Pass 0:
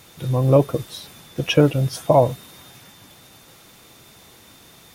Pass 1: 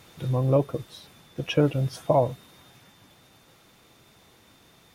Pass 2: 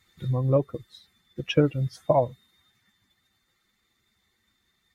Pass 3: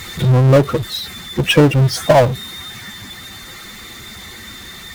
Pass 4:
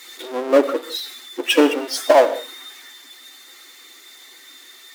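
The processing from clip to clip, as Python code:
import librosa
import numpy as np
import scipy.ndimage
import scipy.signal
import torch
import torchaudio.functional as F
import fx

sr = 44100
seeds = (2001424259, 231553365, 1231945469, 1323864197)

y1 = fx.high_shelf(x, sr, hz=5400.0, db=-7.5)
y1 = fx.rider(y1, sr, range_db=4, speed_s=0.5)
y1 = F.gain(torch.from_numpy(y1), -5.0).numpy()
y2 = fx.bin_expand(y1, sr, power=1.5)
y2 = fx.high_shelf(y2, sr, hz=9200.0, db=-11.0)
y2 = fx.transient(y2, sr, attack_db=3, sustain_db=-1)
y3 = fx.power_curve(y2, sr, exponent=0.5)
y3 = F.gain(torch.from_numpy(y3), 6.0).numpy()
y4 = fx.brickwall_highpass(y3, sr, low_hz=250.0)
y4 = fx.rev_gated(y4, sr, seeds[0], gate_ms=210, shape='flat', drr_db=10.0)
y4 = fx.band_widen(y4, sr, depth_pct=40)
y4 = F.gain(torch.from_numpy(y4), -5.0).numpy()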